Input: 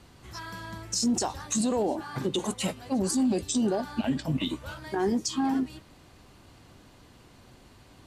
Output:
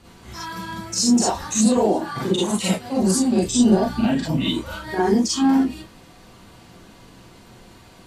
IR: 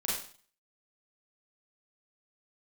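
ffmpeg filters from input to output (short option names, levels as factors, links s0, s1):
-filter_complex "[0:a]asettb=1/sr,asplit=3[s0][s1][s2];[s0]atrim=end=3.474[s3];[s1]atrim=start=3.47:end=4.01,asetpts=PTS-STARTPTS,afade=t=in:d=0.004:c=qsin,afade=t=out:st=0.536:d=0.004:c=qsin,lowshelf=f=120:g=10.5[s4];[s2]atrim=start=4.006[s5];[s3][s4]acrossfade=d=0.004:c1=hsin:c2=qsin[s6];[s6][s5]acrossfade=d=0.004:c1=qsin:c2=hsin[s7];[1:a]atrim=start_sample=2205,atrim=end_sample=3528[s8];[s7][s8]afir=irnorm=-1:irlink=0,volume=1.5"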